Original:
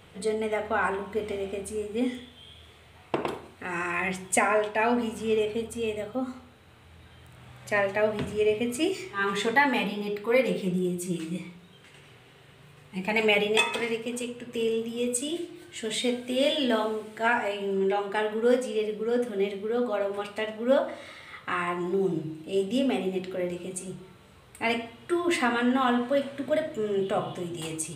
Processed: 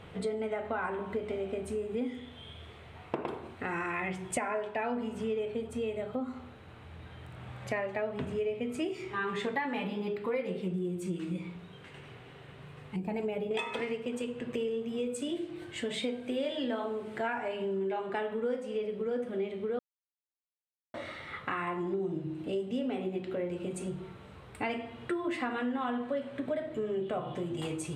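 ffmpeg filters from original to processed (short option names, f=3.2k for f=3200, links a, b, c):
-filter_complex "[0:a]asettb=1/sr,asplit=3[a][b][c];[a]atrim=end=12.964[d];[b]atrim=start=12.96:end=13.51,asetpts=PTS-STARTPTS,afade=t=in:d=0.004:c=qsin,afade=t=out:st=0.546:d=0.004:c=qsin,equalizer=f=2.4k:w=0.42:g=-15[e];[c]atrim=start=13.506[f];[d][e]acrossfade=d=0.004:c1=hsin:c2=qsin[g];[g][f]acrossfade=d=0.004:c1=qsin:c2=hsin,asplit=3[h][i][j];[h]atrim=end=19.79,asetpts=PTS-STARTPTS,afade=t=out:st=19.786:d=0.004:c=hsin[k];[i]atrim=start=19.79:end=20.94,asetpts=PTS-STARTPTS,volume=0[l];[j]atrim=start=20.94,asetpts=PTS-STARTPTS,afade=t=in:d=0.004:c=hsin[m];[k][l][m]concat=n=3:v=0:a=1,lowpass=f=2k:p=1,acompressor=threshold=-37dB:ratio=4,volume=4.5dB"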